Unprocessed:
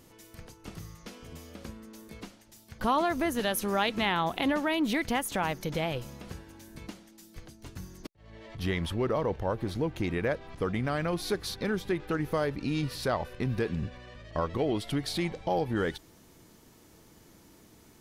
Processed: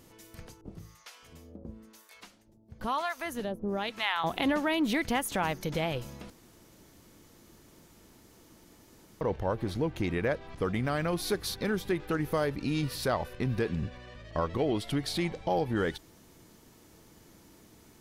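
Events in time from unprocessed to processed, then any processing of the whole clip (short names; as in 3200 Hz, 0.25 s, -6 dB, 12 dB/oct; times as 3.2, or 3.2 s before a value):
0.61–4.24 harmonic tremolo 1 Hz, depth 100%, crossover 700 Hz
6.3–9.21 room tone
10.64–13.34 high shelf 11000 Hz +8.5 dB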